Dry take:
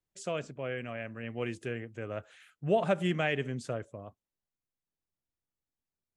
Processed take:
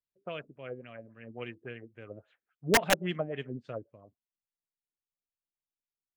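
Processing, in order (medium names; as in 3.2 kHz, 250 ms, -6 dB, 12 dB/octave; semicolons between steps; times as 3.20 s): LFO low-pass sine 3.6 Hz 290–4100 Hz; integer overflow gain 15 dB; upward expansion 1.5:1, over -48 dBFS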